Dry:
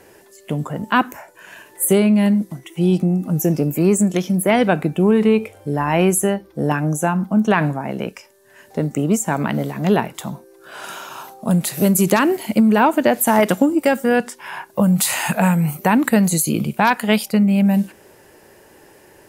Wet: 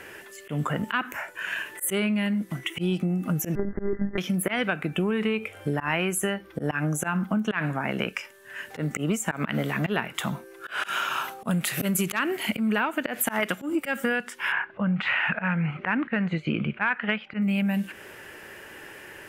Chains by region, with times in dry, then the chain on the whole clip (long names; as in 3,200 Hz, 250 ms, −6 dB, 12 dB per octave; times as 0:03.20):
0:03.55–0:04.18: one scale factor per block 5 bits + linear-phase brick-wall low-pass 2,100 Hz + one-pitch LPC vocoder at 8 kHz 200 Hz
0:14.52–0:17.42: low-pass filter 2,700 Hz 24 dB per octave + parametric band 1,600 Hz +3 dB 0.29 octaves
whole clip: flat-topped bell 2,000 Hz +10.5 dB; volume swells 141 ms; downward compressor 6 to 1, threshold −23 dBFS